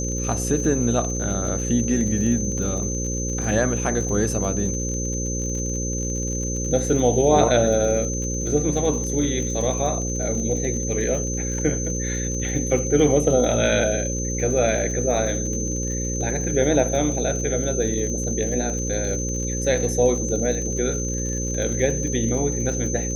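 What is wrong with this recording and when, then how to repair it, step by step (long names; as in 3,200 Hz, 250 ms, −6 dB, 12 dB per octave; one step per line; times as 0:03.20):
mains buzz 60 Hz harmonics 9 −27 dBFS
surface crackle 50 per second −30 dBFS
whistle 6,200 Hz −28 dBFS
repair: click removal
notch filter 6,200 Hz, Q 30
hum removal 60 Hz, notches 9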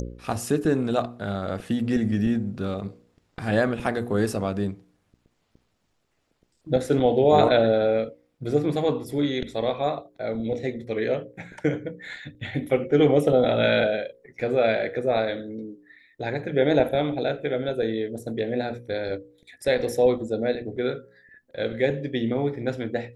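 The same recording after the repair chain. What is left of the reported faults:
none of them is left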